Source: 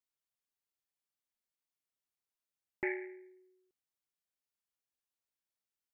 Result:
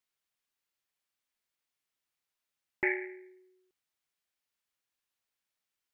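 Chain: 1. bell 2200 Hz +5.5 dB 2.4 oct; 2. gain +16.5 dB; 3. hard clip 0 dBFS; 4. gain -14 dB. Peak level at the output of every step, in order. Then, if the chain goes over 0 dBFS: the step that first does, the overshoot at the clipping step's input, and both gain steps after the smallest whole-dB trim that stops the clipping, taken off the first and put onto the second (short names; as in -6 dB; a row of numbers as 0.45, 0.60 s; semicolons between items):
-18.0, -1.5, -1.5, -15.5 dBFS; no overload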